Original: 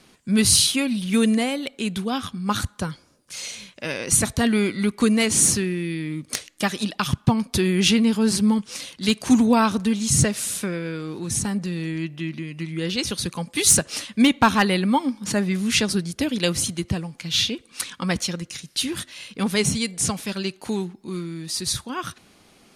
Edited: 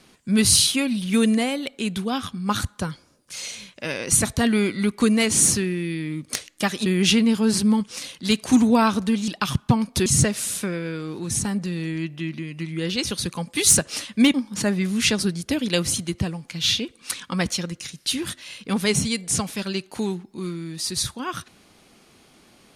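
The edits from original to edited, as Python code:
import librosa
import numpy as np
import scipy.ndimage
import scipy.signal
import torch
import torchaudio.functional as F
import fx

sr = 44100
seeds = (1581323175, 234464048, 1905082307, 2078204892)

y = fx.edit(x, sr, fx.move(start_s=6.86, length_s=0.78, to_s=10.06),
    fx.cut(start_s=14.34, length_s=0.7), tone=tone)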